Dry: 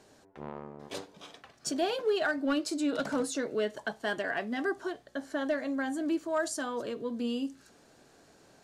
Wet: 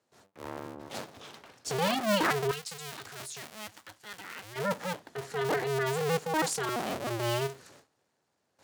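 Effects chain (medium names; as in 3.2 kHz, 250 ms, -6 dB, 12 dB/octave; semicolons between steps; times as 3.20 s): cycle switcher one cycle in 2, inverted; high-pass 78 Hz 24 dB/octave; gate with hold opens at -48 dBFS; 2.51–4.56 s: amplifier tone stack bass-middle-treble 5-5-5; transient shaper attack -7 dB, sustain +2 dB; trim +3 dB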